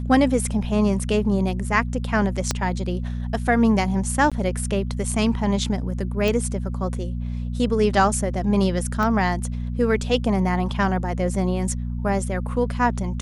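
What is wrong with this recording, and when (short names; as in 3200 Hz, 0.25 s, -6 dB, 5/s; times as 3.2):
hum 60 Hz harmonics 4 -27 dBFS
2.51 pop -7 dBFS
4.3–4.32 gap 16 ms
6.28 pop
9.03 pop -13 dBFS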